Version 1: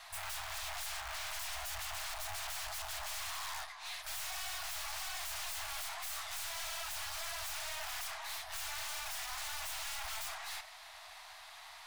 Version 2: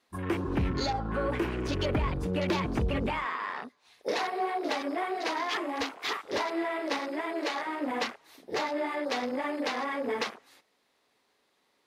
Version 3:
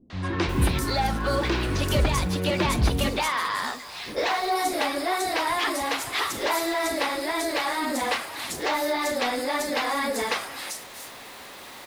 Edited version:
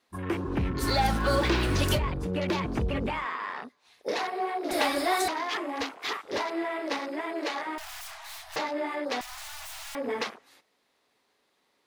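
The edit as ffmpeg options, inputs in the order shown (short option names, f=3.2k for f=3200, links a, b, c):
-filter_complex "[2:a]asplit=2[a][b];[0:a]asplit=2[c][d];[1:a]asplit=5[e][f][g][h][i];[e]atrim=end=0.84[j];[a]atrim=start=0.78:end=2[k];[f]atrim=start=1.94:end=4.712[l];[b]atrim=start=4.708:end=5.282[m];[g]atrim=start=5.278:end=7.782[n];[c]atrim=start=7.778:end=8.562[o];[h]atrim=start=8.558:end=9.212[p];[d]atrim=start=9.208:end=9.952[q];[i]atrim=start=9.948[r];[j][k]acrossfade=d=0.06:c1=tri:c2=tri[s];[s][l]acrossfade=d=0.06:c1=tri:c2=tri[t];[t][m]acrossfade=d=0.004:c1=hsin:c2=hsin[u];[u][n]acrossfade=d=0.004:c1=hsin:c2=hsin[v];[v][o]acrossfade=d=0.004:c1=hsin:c2=hsin[w];[w][p]acrossfade=d=0.004:c1=hsin:c2=hsin[x];[x][q]acrossfade=d=0.004:c1=hsin:c2=hsin[y];[y][r]acrossfade=d=0.004:c1=hsin:c2=hsin"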